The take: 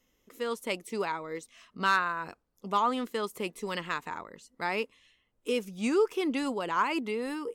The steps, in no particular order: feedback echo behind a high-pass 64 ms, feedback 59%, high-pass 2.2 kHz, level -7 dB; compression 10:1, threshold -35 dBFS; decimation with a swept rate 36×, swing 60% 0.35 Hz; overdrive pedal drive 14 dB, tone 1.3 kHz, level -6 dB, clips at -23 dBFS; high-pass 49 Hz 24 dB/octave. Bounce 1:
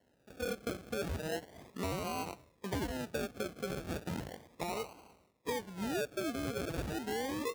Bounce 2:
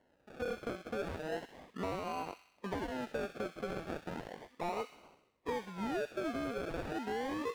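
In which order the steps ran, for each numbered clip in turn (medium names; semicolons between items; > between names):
compression > feedback echo behind a high-pass > overdrive pedal > decimation with a swept rate > high-pass; high-pass > decimation with a swept rate > compression > overdrive pedal > feedback echo behind a high-pass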